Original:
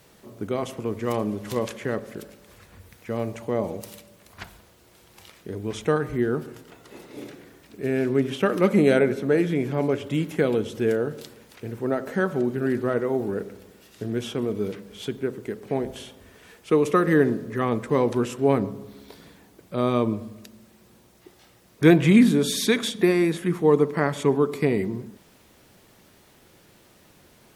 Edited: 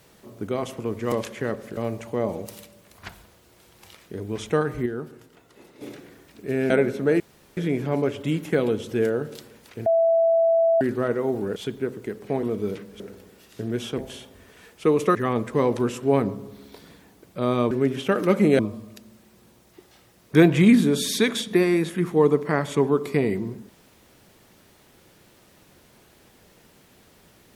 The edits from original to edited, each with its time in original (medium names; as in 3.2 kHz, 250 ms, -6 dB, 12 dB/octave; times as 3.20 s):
1.12–1.56 s: delete
2.21–3.12 s: delete
6.21–7.16 s: gain -6.5 dB
8.05–8.93 s: move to 20.07 s
9.43 s: insert room tone 0.37 s
11.72–12.67 s: bleep 662 Hz -15.5 dBFS
13.42–14.40 s: swap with 14.97–15.84 s
17.01–17.51 s: delete